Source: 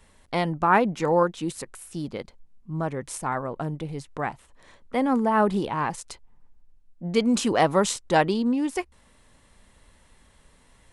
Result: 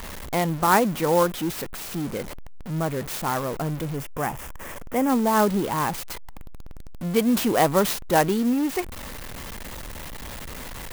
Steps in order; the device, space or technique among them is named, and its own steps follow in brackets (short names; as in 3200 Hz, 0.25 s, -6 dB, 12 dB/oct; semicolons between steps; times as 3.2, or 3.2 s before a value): early CD player with a faulty converter (zero-crossing step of -30 dBFS; clock jitter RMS 0.044 ms); 3.96–5.1 bell 4100 Hz -12 dB 0.5 oct